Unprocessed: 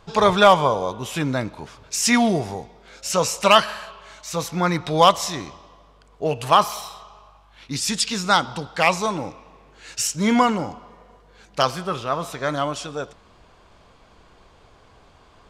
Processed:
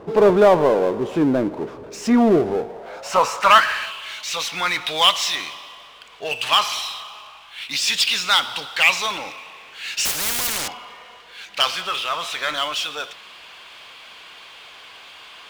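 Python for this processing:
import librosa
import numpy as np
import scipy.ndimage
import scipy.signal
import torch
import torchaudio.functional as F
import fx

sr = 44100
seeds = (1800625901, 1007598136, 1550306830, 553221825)

y = fx.filter_sweep_bandpass(x, sr, from_hz=370.0, to_hz=2900.0, start_s=2.5, end_s=3.97, q=2.0)
y = fx.power_curve(y, sr, exponent=0.7)
y = fx.spectral_comp(y, sr, ratio=10.0, at=(10.05, 10.68))
y = F.gain(torch.from_numpy(y), 5.5).numpy()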